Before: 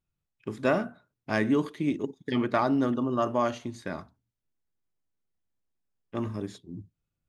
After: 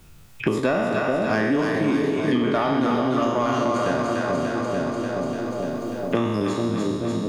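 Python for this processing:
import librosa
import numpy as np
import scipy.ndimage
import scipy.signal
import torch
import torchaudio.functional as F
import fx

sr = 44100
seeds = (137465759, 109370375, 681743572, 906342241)

p1 = fx.spec_trails(x, sr, decay_s=0.92)
p2 = fx.level_steps(p1, sr, step_db=18)
p3 = p1 + (p2 * 10.0 ** (-1.0 / 20.0))
p4 = fx.comb_fb(p3, sr, f0_hz=460.0, decay_s=0.66, harmonics='all', damping=0.0, mix_pct=60)
p5 = 10.0 ** (-20.0 / 20.0) * np.tanh(p4 / 10.0 ** (-20.0 / 20.0))
p6 = p5 + fx.echo_split(p5, sr, split_hz=680.0, low_ms=434, high_ms=294, feedback_pct=52, wet_db=-3.5, dry=0)
p7 = fx.band_squash(p6, sr, depth_pct=100)
y = p7 * 10.0 ** (8.5 / 20.0)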